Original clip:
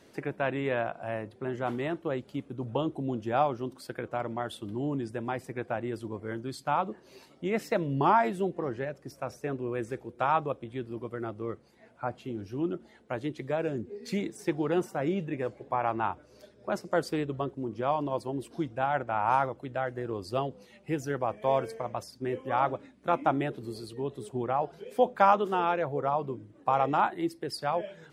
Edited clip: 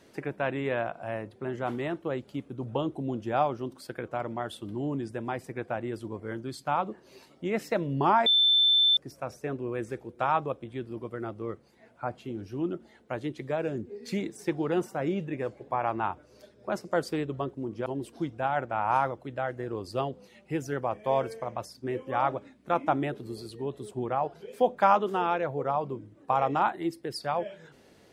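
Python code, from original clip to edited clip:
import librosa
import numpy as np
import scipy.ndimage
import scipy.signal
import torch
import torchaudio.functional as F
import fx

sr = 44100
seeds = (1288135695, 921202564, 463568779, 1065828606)

y = fx.edit(x, sr, fx.bleep(start_s=8.26, length_s=0.71, hz=3540.0, db=-18.5),
    fx.cut(start_s=17.86, length_s=0.38), tone=tone)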